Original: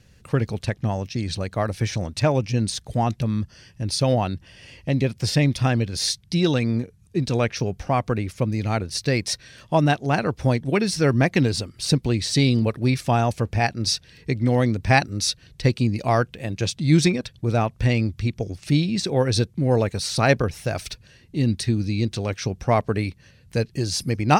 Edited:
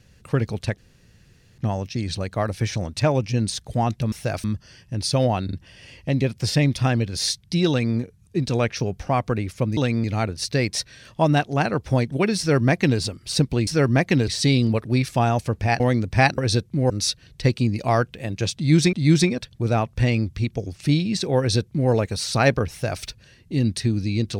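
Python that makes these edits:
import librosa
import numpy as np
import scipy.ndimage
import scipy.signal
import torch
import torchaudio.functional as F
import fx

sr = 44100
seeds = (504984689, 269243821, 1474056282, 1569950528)

y = fx.edit(x, sr, fx.insert_room_tone(at_s=0.78, length_s=0.8),
    fx.stutter(start_s=4.33, slice_s=0.04, count=3),
    fx.duplicate(start_s=6.49, length_s=0.27, to_s=8.57),
    fx.duplicate(start_s=10.92, length_s=0.61, to_s=12.2),
    fx.cut(start_s=13.72, length_s=0.8),
    fx.repeat(start_s=16.76, length_s=0.37, count=2),
    fx.duplicate(start_s=19.22, length_s=0.52, to_s=15.1),
    fx.duplicate(start_s=20.53, length_s=0.32, to_s=3.32), tone=tone)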